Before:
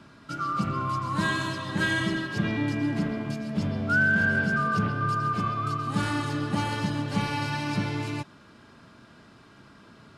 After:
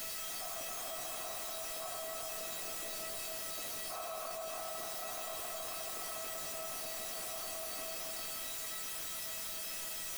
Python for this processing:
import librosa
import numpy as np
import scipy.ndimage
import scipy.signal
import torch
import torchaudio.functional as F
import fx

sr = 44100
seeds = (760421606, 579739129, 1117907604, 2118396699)

y = fx.noise_vocoder(x, sr, seeds[0], bands=3)
y = fx.sample_hold(y, sr, seeds[1], rate_hz=3100.0, jitter_pct=0)
y = fx.vowel_filter(y, sr, vowel='a')
y = fx.quant_dither(y, sr, seeds[2], bits=6, dither='triangular')
y = fx.comb_fb(y, sr, f0_hz=650.0, decay_s=0.31, harmonics='all', damping=0.0, mix_pct=90)
y = y + 10.0 ** (-5.0 / 20.0) * np.pad(y, (int(272 * sr / 1000.0), 0))[:len(y)]
y = fx.env_flatten(y, sr, amount_pct=100)